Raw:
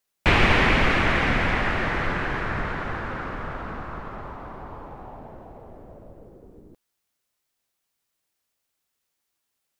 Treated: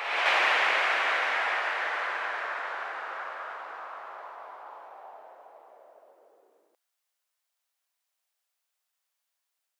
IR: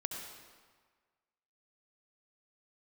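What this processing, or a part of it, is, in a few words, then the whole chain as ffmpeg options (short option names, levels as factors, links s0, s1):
ghost voice: -filter_complex "[0:a]areverse[s0];[1:a]atrim=start_sample=2205[s1];[s0][s1]afir=irnorm=-1:irlink=0,areverse,highpass=f=580:w=0.5412,highpass=f=580:w=1.3066,volume=0.668"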